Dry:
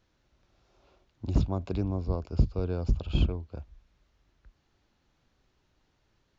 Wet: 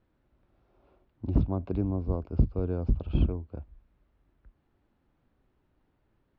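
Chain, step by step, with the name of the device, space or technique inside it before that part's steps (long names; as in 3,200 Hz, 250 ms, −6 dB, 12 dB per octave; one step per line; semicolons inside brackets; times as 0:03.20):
phone in a pocket (low-pass filter 3,200 Hz 12 dB per octave; parametric band 270 Hz +3.5 dB 0.77 octaves; high-shelf EQ 2,100 Hz −11 dB)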